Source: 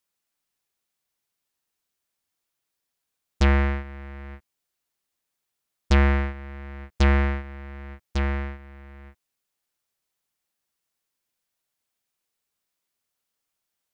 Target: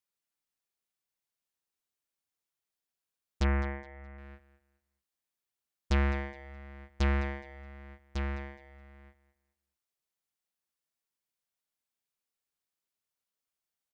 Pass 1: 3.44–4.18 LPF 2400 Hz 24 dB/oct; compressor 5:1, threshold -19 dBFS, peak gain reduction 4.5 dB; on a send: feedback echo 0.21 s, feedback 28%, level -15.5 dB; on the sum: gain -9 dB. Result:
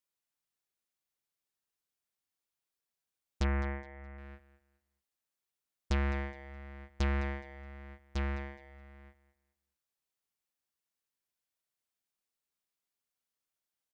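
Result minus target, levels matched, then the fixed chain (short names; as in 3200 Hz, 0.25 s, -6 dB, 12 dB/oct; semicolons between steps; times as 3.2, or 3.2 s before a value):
compressor: peak gain reduction +4.5 dB
3.44–4.18 LPF 2400 Hz 24 dB/oct; on a send: feedback echo 0.21 s, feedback 28%, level -15.5 dB; on the sum: gain -9 dB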